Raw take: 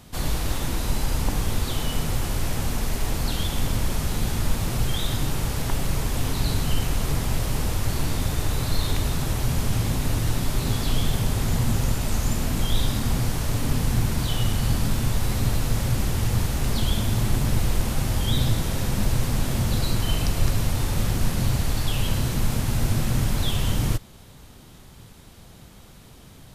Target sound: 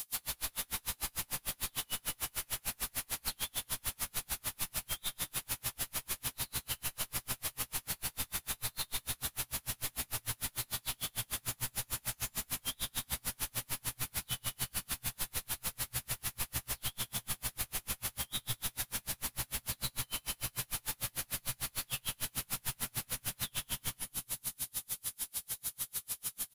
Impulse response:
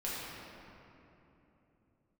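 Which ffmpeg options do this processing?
-filter_complex "[0:a]aemphasis=mode=production:type=riaa,acrossover=split=3900[a][b];[b]acompressor=threshold=-29dB:ratio=4:attack=1:release=60[c];[a][c]amix=inputs=2:normalize=0,equalizer=f=360:t=o:w=2.1:g=-9.5,acompressor=threshold=-37dB:ratio=10,aeval=exprs='val(0)+0.00398*sin(2*PI*10000*n/s)':c=same,asoftclip=type=hard:threshold=-37dB,asplit=2[d][e];[e]adelay=16,volume=-2.5dB[f];[d][f]amix=inputs=2:normalize=0,asplit=2[g][h];[1:a]atrim=start_sample=2205,adelay=130[i];[h][i]afir=irnorm=-1:irlink=0,volume=-9dB[j];[g][j]amix=inputs=2:normalize=0,aeval=exprs='val(0)*pow(10,-39*(0.5-0.5*cos(2*PI*6.7*n/s))/20)':c=same,volume=5.5dB"

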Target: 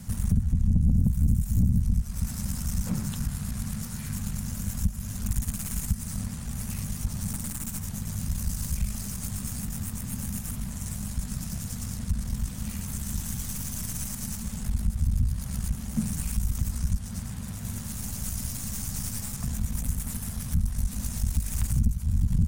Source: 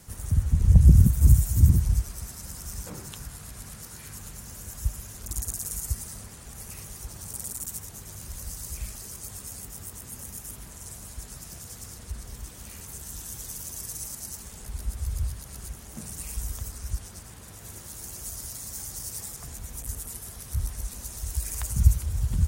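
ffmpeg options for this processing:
-af "acompressor=threshold=-33dB:ratio=3,aeval=exprs='(tanh(44.7*val(0)+0.65)-tanh(0.65))/44.7':c=same,lowshelf=f=280:t=q:w=3:g=8,volume=6dB"

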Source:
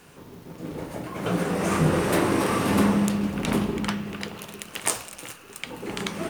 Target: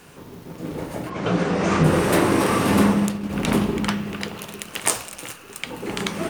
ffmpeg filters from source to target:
-filter_complex "[0:a]asplit=3[a][b][c];[a]afade=t=out:st=1.09:d=0.02[d];[b]lowpass=f=6.6k:w=0.5412,lowpass=f=6.6k:w=1.3066,afade=t=in:st=1.09:d=0.02,afade=t=out:st=1.83:d=0.02[e];[c]afade=t=in:st=1.83:d=0.02[f];[d][e][f]amix=inputs=3:normalize=0,asplit=3[g][h][i];[g]afade=t=out:st=2.77:d=0.02[j];[h]agate=range=-33dB:threshold=-18dB:ratio=3:detection=peak,afade=t=in:st=2.77:d=0.02,afade=t=out:st=3.29:d=0.02[k];[i]afade=t=in:st=3.29:d=0.02[l];[j][k][l]amix=inputs=3:normalize=0,volume=4dB"

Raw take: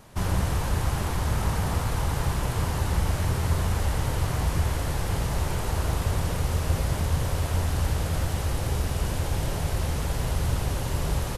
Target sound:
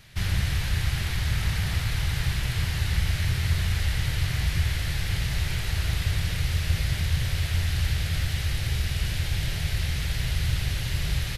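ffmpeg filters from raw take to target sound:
-af "equalizer=f=125:t=o:w=1:g=3,equalizer=f=250:t=o:w=1:g=-9,equalizer=f=500:t=o:w=1:g=-8,equalizer=f=1k:t=o:w=1:g=-12,equalizer=f=2k:t=o:w=1:g=8,equalizer=f=4k:t=o:w=1:g=7,equalizer=f=8k:t=o:w=1:g=-4"

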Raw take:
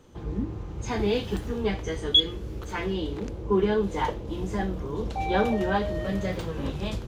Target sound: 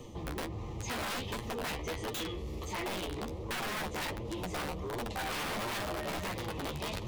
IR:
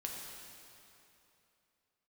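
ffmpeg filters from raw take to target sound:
-filter_complex "[0:a]asuperstop=centerf=1500:order=8:qfactor=2.8,areverse,acompressor=mode=upward:threshold=-29dB:ratio=2.5,areverse,aeval=exprs='(mod(14.1*val(0)+1,2)-1)/14.1':c=same,flanger=delay=8.4:depth=5.3:regen=28:speed=1.4:shape=sinusoidal,acrossover=split=600|4400[a][b][c];[a]acompressor=threshold=-42dB:ratio=4[d];[b]acompressor=threshold=-38dB:ratio=4[e];[c]acompressor=threshold=-48dB:ratio=4[f];[d][e][f]amix=inputs=3:normalize=0,asoftclip=type=tanh:threshold=-36.5dB,volume=5.5dB"

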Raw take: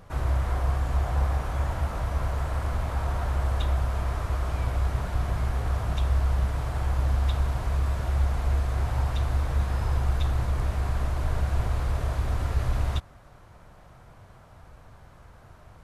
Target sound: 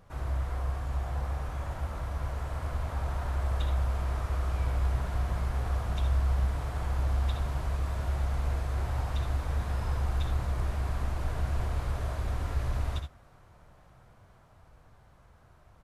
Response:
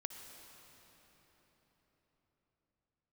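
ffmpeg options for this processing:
-filter_complex "[0:a]dynaudnorm=f=340:g=17:m=3.5dB,asplit=2[a][b];[b]aecho=0:1:64|78:0.316|0.299[c];[a][c]amix=inputs=2:normalize=0,volume=-8dB"

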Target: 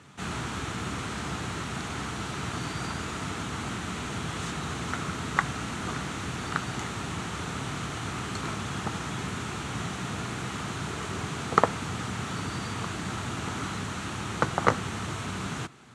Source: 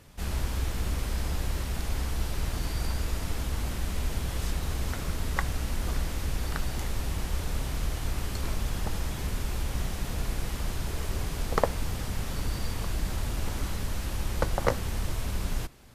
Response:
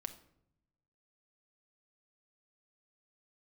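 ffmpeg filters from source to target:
-af "highpass=f=110:w=0.5412,highpass=f=110:w=1.3066,equalizer=f=550:t=q:w=4:g=-8,equalizer=f=1.3k:t=q:w=4:g=7,equalizer=f=5k:t=q:w=4:g=-8,lowpass=f=8.1k:w=0.5412,lowpass=f=8.1k:w=1.3066,volume=4.5dB"

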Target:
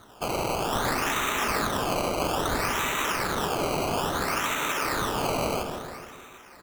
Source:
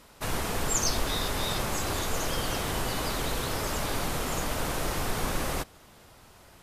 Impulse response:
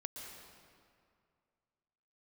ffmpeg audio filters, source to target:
-filter_complex "[0:a]highpass=390,equalizer=f=510:t=q:w=4:g=-10,equalizer=f=740:t=q:w=4:g=-8,equalizer=f=1.2k:t=q:w=4:g=7,equalizer=f=2.6k:t=q:w=4:g=9,equalizer=f=4.2k:t=q:w=4:g=-8,lowpass=f=5.4k:w=0.5412,lowpass=f=5.4k:w=1.3066,asplit=2[a][b];[1:a]atrim=start_sample=2205[c];[b][c]afir=irnorm=-1:irlink=0,volume=2dB[d];[a][d]amix=inputs=2:normalize=0,acrusher=samples=17:mix=1:aa=0.000001:lfo=1:lforange=17:lforate=0.6,bandreject=f=1.1k:w=17,asplit=2[e][f];[f]adelay=153,lowpass=f=1.6k:p=1,volume=-7dB,asplit=2[g][h];[h]adelay=153,lowpass=f=1.6k:p=1,volume=0.54,asplit=2[i][j];[j]adelay=153,lowpass=f=1.6k:p=1,volume=0.54,asplit=2[k][l];[l]adelay=153,lowpass=f=1.6k:p=1,volume=0.54,asplit=2[m][n];[n]adelay=153,lowpass=f=1.6k:p=1,volume=0.54,asplit=2[o][p];[p]adelay=153,lowpass=f=1.6k:p=1,volume=0.54,asplit=2[q][r];[r]adelay=153,lowpass=f=1.6k:p=1,volume=0.54[s];[e][g][i][k][m][o][q][s]amix=inputs=8:normalize=0"

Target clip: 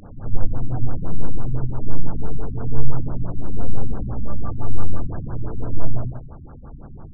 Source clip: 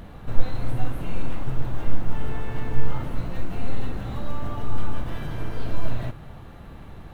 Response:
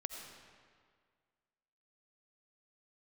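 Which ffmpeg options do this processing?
-af "afftfilt=real='re':imag='-im':win_size=8192:overlap=0.75,afftfilt=real='re*lt(b*sr/1024,270*pow(1700/270,0.5+0.5*sin(2*PI*5.9*pts/sr)))':imag='im*lt(b*sr/1024,270*pow(1700/270,0.5+0.5*sin(2*PI*5.9*pts/sr)))':win_size=1024:overlap=0.75,volume=7.5dB"

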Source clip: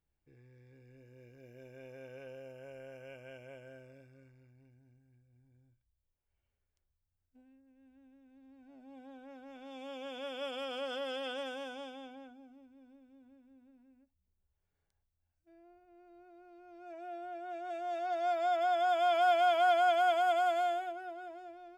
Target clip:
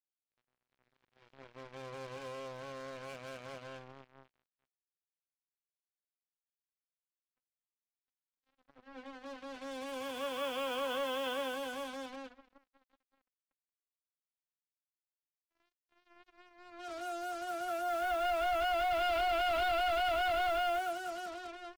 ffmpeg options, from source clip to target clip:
-filter_complex "[0:a]asplit=2[a][b];[b]asetrate=88200,aresample=44100,atempo=0.5,volume=-6dB[c];[a][c]amix=inputs=2:normalize=0,volume=32.5dB,asoftclip=hard,volume=-32.5dB,lowpass=f=3.8k:w=0.5412,lowpass=f=3.8k:w=1.3066,acrusher=bits=7:mix=0:aa=0.5,volume=2.5dB"

